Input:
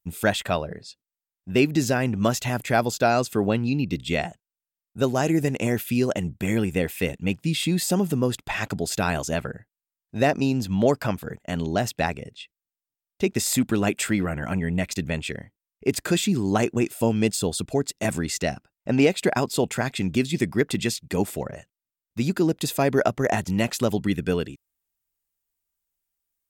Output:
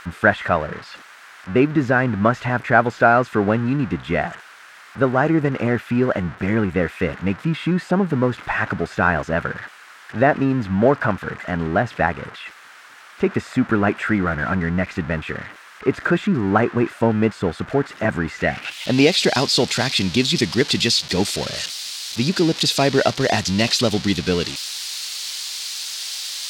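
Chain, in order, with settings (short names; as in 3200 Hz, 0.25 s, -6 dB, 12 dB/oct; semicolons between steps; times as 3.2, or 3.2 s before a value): switching spikes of -16 dBFS; low-pass sweep 1500 Hz -> 4400 Hz, 18.34–18.99; gain +3.5 dB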